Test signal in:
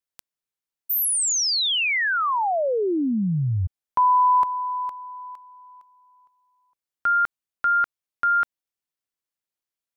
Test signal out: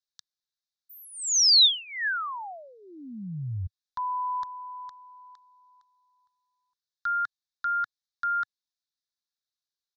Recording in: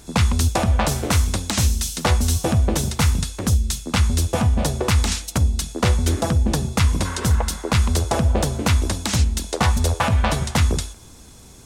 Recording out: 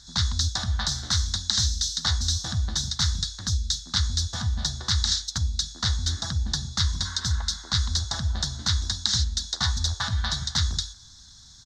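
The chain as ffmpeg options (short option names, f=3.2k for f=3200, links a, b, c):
-af "firequalizer=gain_entry='entry(100,0);entry(450,-23);entry(750,-8);entry(1700,5);entry(2500,-17);entry(3700,15);entry(6200,9);entry(10000,-17)':delay=0.05:min_phase=1,volume=-8dB"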